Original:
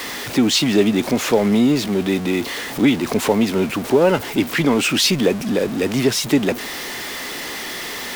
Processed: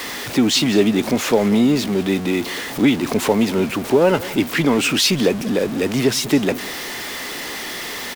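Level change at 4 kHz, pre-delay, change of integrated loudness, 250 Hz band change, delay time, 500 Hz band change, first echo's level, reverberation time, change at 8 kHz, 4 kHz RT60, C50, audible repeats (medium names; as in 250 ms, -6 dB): 0.0 dB, no reverb, 0.0 dB, 0.0 dB, 189 ms, 0.0 dB, -18.5 dB, no reverb, 0.0 dB, no reverb, no reverb, 1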